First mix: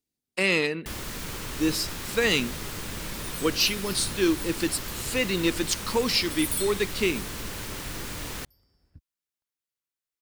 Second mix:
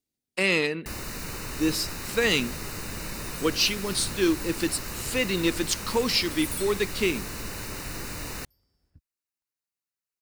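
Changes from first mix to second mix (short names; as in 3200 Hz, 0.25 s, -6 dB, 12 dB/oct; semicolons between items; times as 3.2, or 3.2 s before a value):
first sound: add Butterworth band-stop 3300 Hz, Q 5.4; second sound -5.0 dB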